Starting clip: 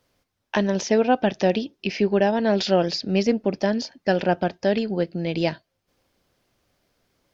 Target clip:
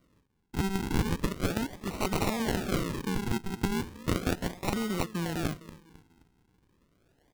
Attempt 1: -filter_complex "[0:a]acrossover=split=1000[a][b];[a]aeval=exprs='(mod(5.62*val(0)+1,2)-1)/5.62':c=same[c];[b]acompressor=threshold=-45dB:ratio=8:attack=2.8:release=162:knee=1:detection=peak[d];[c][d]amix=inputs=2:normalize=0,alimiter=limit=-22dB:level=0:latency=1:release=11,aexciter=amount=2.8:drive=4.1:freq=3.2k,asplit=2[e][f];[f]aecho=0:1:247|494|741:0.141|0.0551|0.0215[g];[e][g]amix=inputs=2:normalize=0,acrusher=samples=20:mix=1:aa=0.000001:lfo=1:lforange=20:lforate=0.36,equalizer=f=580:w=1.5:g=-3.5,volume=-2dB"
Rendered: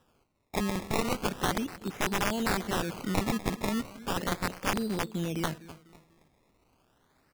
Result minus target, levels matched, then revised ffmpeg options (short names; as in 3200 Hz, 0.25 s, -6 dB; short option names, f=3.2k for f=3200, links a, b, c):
compressor: peak gain reduction +8.5 dB; decimation with a swept rate: distortion -6 dB
-filter_complex "[0:a]acrossover=split=1000[a][b];[a]aeval=exprs='(mod(5.62*val(0)+1,2)-1)/5.62':c=same[c];[b]acompressor=threshold=-35dB:ratio=8:attack=2.8:release=162:knee=1:detection=peak[d];[c][d]amix=inputs=2:normalize=0,alimiter=limit=-22dB:level=0:latency=1:release=11,aexciter=amount=2.8:drive=4.1:freq=3.2k,asplit=2[e][f];[f]aecho=0:1:247|494|741:0.141|0.0551|0.0215[g];[e][g]amix=inputs=2:normalize=0,acrusher=samples=51:mix=1:aa=0.000001:lfo=1:lforange=51:lforate=0.36,equalizer=f=580:w=1.5:g=-3.5,volume=-2dB"